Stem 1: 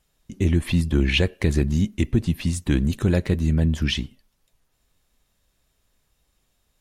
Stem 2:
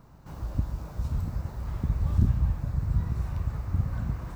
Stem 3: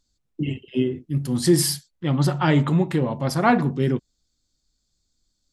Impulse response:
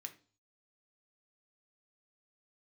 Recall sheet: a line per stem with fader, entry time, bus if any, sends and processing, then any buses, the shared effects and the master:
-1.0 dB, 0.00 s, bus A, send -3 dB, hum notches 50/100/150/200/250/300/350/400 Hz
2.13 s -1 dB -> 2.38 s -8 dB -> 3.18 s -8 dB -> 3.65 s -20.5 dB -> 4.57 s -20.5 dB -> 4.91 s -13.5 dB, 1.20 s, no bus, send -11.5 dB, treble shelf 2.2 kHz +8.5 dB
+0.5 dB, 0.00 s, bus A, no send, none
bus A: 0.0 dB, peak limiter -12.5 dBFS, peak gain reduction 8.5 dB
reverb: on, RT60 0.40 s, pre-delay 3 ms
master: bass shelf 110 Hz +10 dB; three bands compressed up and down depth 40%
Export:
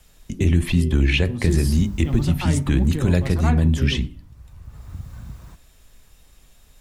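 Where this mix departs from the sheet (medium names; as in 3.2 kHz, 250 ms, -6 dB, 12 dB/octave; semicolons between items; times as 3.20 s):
stem 2 -1.0 dB -> -8.0 dB; stem 3 +0.5 dB -> -9.5 dB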